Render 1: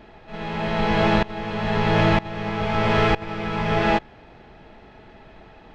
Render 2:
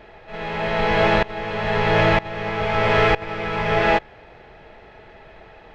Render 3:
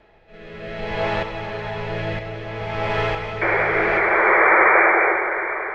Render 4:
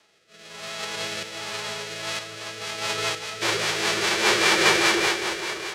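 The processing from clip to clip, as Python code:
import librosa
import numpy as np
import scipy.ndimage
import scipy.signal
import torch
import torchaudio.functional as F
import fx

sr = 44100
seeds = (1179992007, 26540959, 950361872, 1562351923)

y1 = fx.graphic_eq(x, sr, hz=(250, 500, 2000), db=(-7, 6, 5))
y2 = fx.spec_paint(y1, sr, seeds[0], shape='noise', start_s=3.41, length_s=1.72, low_hz=320.0, high_hz=2400.0, level_db=-9.0)
y2 = fx.rotary(y2, sr, hz=0.6)
y2 = fx.rev_plate(y2, sr, seeds[1], rt60_s=4.7, hf_ratio=0.9, predelay_ms=0, drr_db=3.0)
y2 = F.gain(torch.from_numpy(y2), -6.0).numpy()
y3 = fx.envelope_flatten(y2, sr, power=0.1)
y3 = fx.rotary_switch(y3, sr, hz=1.1, then_hz=5.0, switch_at_s=1.72)
y3 = fx.bandpass_edges(y3, sr, low_hz=150.0, high_hz=5500.0)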